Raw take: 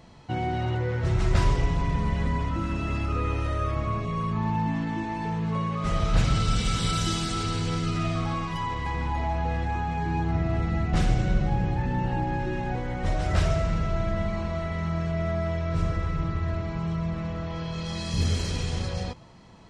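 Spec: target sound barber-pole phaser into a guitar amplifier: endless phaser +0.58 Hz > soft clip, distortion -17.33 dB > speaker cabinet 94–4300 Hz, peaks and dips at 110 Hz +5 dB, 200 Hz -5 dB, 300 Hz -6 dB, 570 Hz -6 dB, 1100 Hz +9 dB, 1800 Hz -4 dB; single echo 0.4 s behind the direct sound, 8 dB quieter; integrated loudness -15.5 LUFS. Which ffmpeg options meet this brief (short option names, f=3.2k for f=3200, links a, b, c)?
-filter_complex "[0:a]aecho=1:1:400:0.398,asplit=2[a][b];[b]afreqshift=0.58[c];[a][c]amix=inputs=2:normalize=1,asoftclip=threshold=-20dB,highpass=94,equalizer=f=110:t=q:w=4:g=5,equalizer=f=200:t=q:w=4:g=-5,equalizer=f=300:t=q:w=4:g=-6,equalizer=f=570:t=q:w=4:g=-6,equalizer=f=1.1k:t=q:w=4:g=9,equalizer=f=1.8k:t=q:w=4:g=-4,lowpass=f=4.3k:w=0.5412,lowpass=f=4.3k:w=1.3066,volume=16.5dB"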